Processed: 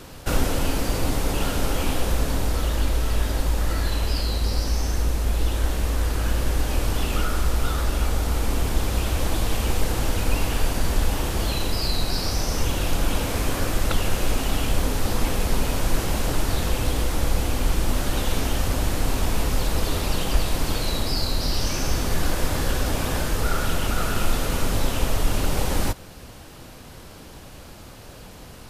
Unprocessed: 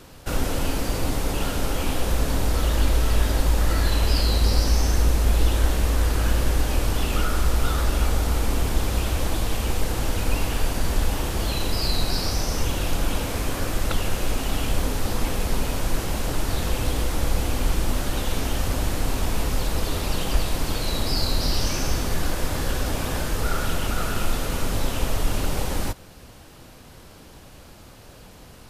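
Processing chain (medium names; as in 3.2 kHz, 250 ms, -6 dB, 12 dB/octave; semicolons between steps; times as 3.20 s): gain riding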